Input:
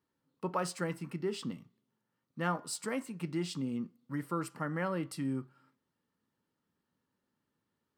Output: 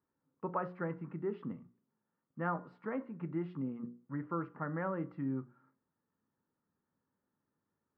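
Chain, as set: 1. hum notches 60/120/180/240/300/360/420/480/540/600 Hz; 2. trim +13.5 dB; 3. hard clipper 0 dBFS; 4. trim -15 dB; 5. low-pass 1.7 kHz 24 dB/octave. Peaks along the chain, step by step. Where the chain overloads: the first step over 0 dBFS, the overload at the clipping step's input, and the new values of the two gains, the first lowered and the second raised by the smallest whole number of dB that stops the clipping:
-19.0 dBFS, -5.5 dBFS, -5.5 dBFS, -20.5 dBFS, -21.5 dBFS; nothing clips

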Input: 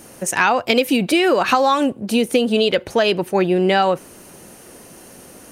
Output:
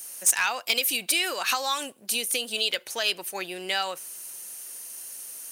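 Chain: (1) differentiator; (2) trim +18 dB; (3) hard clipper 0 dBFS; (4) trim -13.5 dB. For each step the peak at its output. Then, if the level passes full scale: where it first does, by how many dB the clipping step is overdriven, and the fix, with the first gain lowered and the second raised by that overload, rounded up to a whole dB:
-8.5 dBFS, +9.5 dBFS, 0.0 dBFS, -13.5 dBFS; step 2, 9.5 dB; step 2 +8 dB, step 4 -3.5 dB

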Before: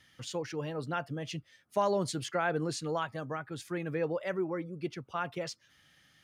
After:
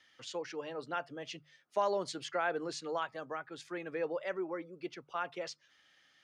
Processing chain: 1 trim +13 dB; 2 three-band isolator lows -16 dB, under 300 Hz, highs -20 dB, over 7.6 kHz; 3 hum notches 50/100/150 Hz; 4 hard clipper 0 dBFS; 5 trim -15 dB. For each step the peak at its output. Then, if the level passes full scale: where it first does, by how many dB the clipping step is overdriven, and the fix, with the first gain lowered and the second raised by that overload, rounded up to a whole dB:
-4.5 dBFS, -5.0 dBFS, -5.0 dBFS, -5.0 dBFS, -20.0 dBFS; nothing clips

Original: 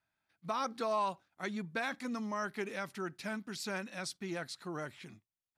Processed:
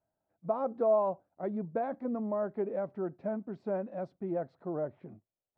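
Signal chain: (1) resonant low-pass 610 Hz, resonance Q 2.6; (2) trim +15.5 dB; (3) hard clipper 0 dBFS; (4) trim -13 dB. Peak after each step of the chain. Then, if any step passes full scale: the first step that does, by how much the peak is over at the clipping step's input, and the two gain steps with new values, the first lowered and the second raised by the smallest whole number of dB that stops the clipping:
-20.5 dBFS, -5.0 dBFS, -5.0 dBFS, -18.0 dBFS; nothing clips

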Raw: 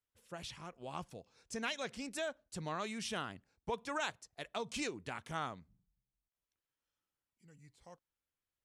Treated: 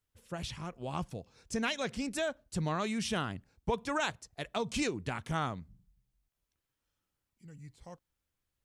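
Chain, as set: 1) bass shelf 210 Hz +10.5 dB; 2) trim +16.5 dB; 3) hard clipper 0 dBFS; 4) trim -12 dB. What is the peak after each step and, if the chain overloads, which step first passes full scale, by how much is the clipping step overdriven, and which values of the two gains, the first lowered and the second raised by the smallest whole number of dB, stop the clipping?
-22.0 dBFS, -5.5 dBFS, -5.5 dBFS, -17.5 dBFS; nothing clips

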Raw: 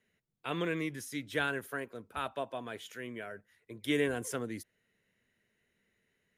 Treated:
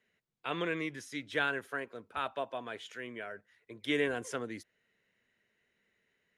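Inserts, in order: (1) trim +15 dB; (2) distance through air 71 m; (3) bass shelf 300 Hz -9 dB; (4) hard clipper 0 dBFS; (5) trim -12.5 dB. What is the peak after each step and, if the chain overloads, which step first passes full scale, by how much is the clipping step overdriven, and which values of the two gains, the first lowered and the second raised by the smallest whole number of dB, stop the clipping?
-1.5 dBFS, -2.5 dBFS, -3.5 dBFS, -3.5 dBFS, -16.0 dBFS; nothing clips

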